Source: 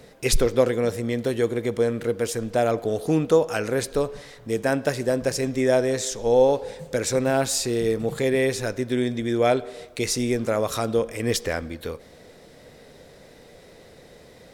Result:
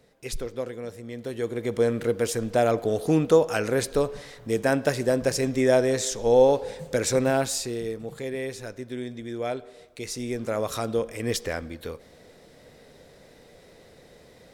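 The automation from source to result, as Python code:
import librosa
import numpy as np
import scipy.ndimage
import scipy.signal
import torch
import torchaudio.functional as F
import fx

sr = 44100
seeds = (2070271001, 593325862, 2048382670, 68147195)

y = fx.gain(x, sr, db=fx.line((1.04, -12.5), (1.85, 0.0), (7.24, 0.0), (8.0, -10.0), (10.01, -10.0), (10.61, -3.5)))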